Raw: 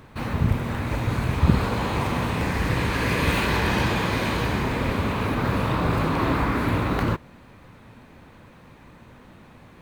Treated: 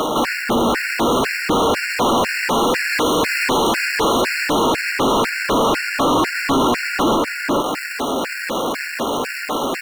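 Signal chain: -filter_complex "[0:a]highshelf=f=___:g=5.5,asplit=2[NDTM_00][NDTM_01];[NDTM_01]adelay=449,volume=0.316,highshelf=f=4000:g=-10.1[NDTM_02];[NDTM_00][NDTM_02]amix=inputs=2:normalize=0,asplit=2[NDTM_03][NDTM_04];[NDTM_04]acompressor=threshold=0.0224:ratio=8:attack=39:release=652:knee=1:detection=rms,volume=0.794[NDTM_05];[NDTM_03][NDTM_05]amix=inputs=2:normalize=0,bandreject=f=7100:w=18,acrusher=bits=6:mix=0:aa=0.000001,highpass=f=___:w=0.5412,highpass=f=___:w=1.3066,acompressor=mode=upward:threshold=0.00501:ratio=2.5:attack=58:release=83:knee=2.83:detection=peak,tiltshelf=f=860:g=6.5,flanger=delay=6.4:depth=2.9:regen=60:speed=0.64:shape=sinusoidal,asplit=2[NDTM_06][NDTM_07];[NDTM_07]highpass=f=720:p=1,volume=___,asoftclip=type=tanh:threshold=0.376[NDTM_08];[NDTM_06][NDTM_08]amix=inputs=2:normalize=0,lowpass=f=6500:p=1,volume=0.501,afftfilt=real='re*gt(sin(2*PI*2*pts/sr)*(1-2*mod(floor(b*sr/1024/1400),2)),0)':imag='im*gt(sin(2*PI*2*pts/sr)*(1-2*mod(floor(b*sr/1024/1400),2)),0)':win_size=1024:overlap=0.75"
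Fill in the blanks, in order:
5600, 240, 240, 112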